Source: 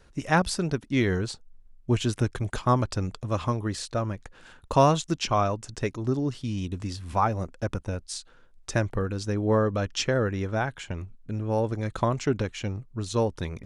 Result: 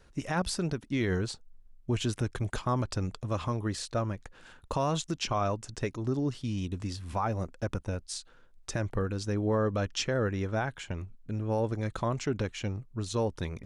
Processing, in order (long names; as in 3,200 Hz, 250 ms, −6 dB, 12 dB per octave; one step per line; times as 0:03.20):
brickwall limiter −17.5 dBFS, peak gain reduction 9.5 dB
level −2.5 dB